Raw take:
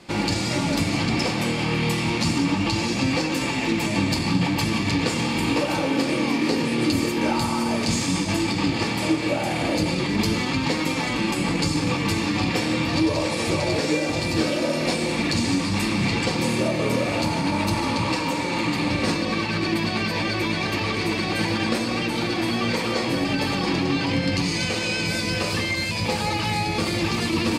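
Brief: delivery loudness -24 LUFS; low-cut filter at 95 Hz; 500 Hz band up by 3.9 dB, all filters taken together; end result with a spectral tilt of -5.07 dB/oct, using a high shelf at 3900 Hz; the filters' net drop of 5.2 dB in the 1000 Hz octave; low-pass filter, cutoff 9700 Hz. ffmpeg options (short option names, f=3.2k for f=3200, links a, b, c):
-af "highpass=95,lowpass=9.7k,equalizer=f=500:t=o:g=7,equalizer=f=1k:t=o:g=-8.5,highshelf=f=3.9k:g=-8,volume=-1dB"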